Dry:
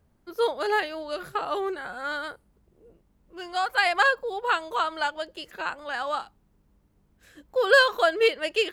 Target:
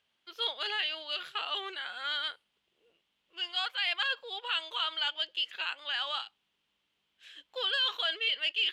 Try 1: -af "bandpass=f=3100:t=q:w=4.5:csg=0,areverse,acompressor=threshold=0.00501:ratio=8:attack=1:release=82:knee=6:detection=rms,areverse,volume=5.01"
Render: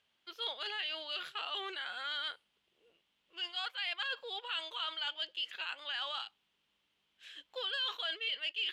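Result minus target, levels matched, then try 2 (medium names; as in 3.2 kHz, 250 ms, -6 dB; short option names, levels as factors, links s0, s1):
compression: peak gain reduction +6.5 dB
-af "bandpass=f=3100:t=q:w=4.5:csg=0,areverse,acompressor=threshold=0.0119:ratio=8:attack=1:release=82:knee=6:detection=rms,areverse,volume=5.01"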